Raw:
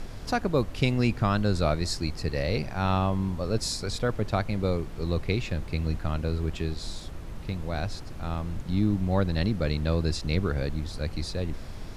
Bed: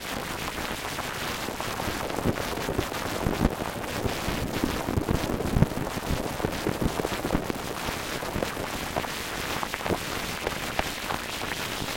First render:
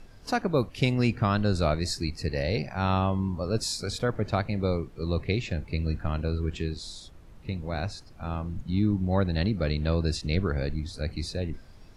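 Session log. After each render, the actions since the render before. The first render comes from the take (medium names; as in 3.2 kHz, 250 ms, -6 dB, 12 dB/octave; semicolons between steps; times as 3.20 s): noise print and reduce 12 dB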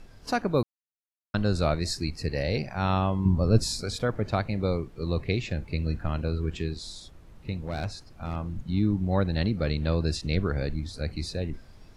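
0.63–1.34 s: mute; 3.25–3.81 s: bass shelf 290 Hz +11 dB; 7.62–8.36 s: overload inside the chain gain 24 dB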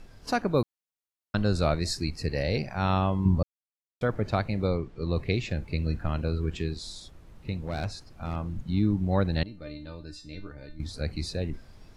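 3.43–4.01 s: mute; 4.67–5.16 s: distance through air 77 m; 9.43–10.80 s: feedback comb 300 Hz, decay 0.29 s, mix 90%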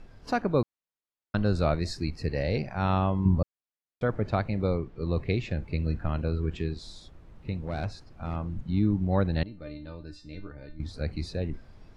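low-pass 2.6 kHz 6 dB/octave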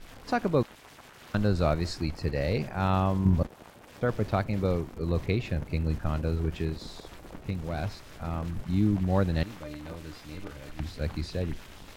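add bed -19 dB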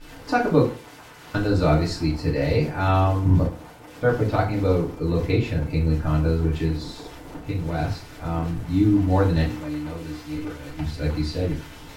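FDN reverb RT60 0.41 s, low-frequency decay 1×, high-frequency decay 0.75×, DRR -5 dB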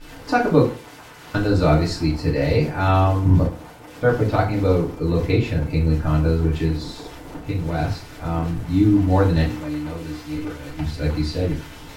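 trim +2.5 dB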